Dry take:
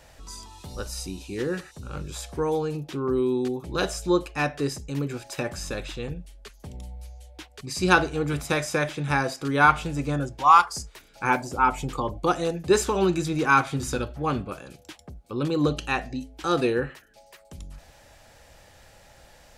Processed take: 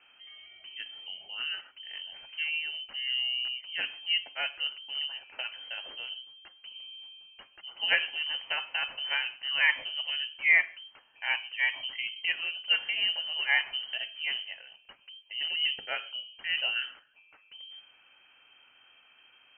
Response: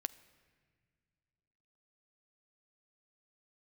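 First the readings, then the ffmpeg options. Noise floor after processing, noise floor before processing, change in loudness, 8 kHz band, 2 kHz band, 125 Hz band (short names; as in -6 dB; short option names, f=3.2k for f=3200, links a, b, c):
-62 dBFS, -54 dBFS, -4.5 dB, under -40 dB, -0.5 dB, under -40 dB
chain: -filter_complex "[1:a]atrim=start_sample=2205,atrim=end_sample=6615[a];[0:a][a]afir=irnorm=-1:irlink=0,lowpass=f=2.7k:t=q:w=0.5098,lowpass=f=2.7k:t=q:w=0.6013,lowpass=f=2.7k:t=q:w=0.9,lowpass=f=2.7k:t=q:w=2.563,afreqshift=-3200,volume=-6dB"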